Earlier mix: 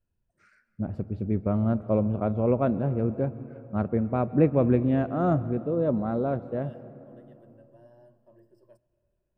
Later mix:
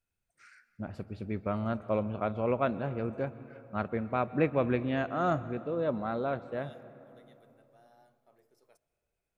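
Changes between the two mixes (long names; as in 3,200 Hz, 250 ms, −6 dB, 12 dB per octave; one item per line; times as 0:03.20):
second voice: remove EQ curve with evenly spaced ripples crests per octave 1.3, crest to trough 17 dB
master: add tilt shelving filter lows −10 dB, about 910 Hz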